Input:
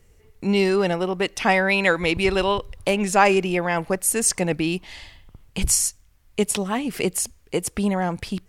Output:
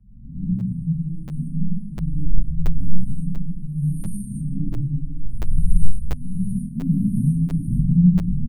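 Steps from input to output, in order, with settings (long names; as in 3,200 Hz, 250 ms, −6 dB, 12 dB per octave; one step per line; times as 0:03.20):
peak hold with a rise ahead of every peak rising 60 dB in 0.85 s
downward compressor 2.5 to 1, threshold −26 dBFS, peak gain reduction 11.5 dB
linear-phase brick-wall band-stop 310–8,600 Hz
frequency shifter −27 Hz
0:06.75–0:07.90: parametric band 160 Hz +12 dB 0.73 octaves
repeating echo 159 ms, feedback 28%, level −18 dB
comb and all-pass reverb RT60 1.5 s, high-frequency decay 0.5×, pre-delay 50 ms, DRR −6 dB
automatic gain control gain up to 7.5 dB
RIAA equalisation playback
regular buffer underruns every 0.69 s, samples 512, zero, from 0:00.59
barber-pole flanger 7.1 ms +1.7 Hz
level −11 dB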